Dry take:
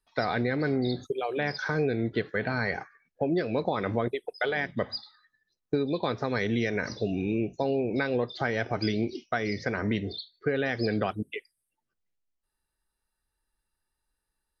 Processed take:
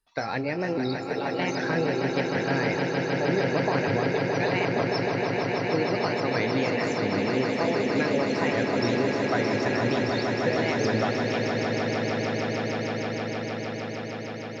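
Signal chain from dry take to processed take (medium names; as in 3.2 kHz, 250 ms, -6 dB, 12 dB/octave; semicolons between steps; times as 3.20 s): sawtooth pitch modulation +4 st, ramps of 775 ms; echo with a slow build-up 155 ms, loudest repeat 8, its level -7.5 dB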